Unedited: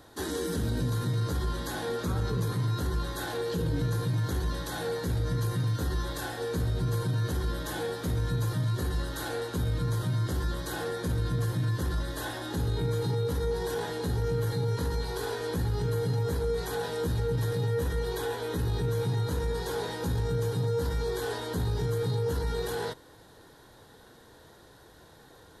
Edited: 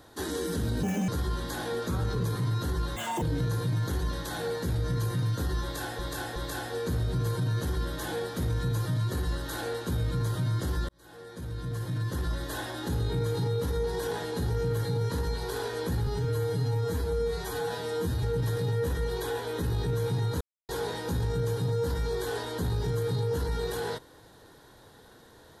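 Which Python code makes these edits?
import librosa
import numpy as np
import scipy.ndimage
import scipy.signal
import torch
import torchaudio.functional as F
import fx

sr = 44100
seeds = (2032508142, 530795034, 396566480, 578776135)

y = fx.edit(x, sr, fx.speed_span(start_s=0.83, length_s=0.42, speed=1.66),
    fx.speed_span(start_s=3.13, length_s=0.5, speed=1.96),
    fx.repeat(start_s=6.03, length_s=0.37, count=3),
    fx.fade_in_span(start_s=10.56, length_s=1.49),
    fx.stretch_span(start_s=15.74, length_s=1.44, factor=1.5),
    fx.silence(start_s=19.36, length_s=0.28), tone=tone)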